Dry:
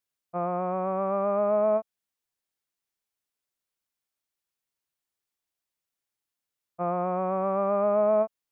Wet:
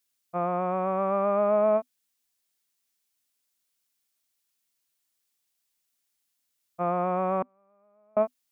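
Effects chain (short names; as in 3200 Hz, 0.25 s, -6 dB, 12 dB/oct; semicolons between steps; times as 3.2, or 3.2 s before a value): high shelf 2200 Hz +11 dB; 7.42–8.17 flipped gate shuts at -25 dBFS, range -41 dB; bell 250 Hz +9 dB 0.21 oct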